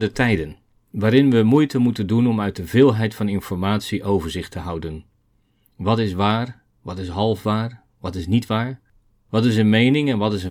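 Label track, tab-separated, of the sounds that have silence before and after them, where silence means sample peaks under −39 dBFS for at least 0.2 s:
0.940000	5.010000	sound
5.660000	6.520000	sound
6.850000	7.760000	sound
8.030000	8.760000	sound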